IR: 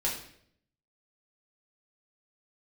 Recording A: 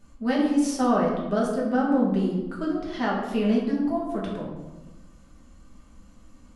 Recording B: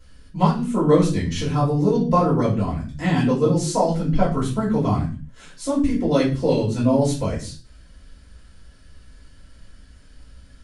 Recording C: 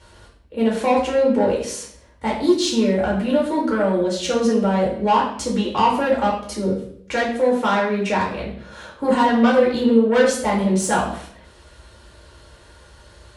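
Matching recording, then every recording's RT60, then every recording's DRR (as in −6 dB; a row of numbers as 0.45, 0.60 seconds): C; 1.1, 0.40, 0.65 seconds; −5.5, −8.0, −4.5 decibels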